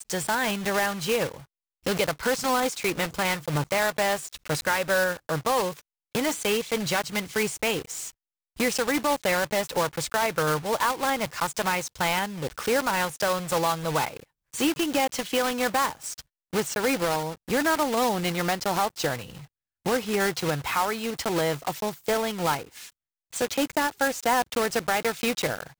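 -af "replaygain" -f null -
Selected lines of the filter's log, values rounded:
track_gain = +7.1 dB
track_peak = 0.181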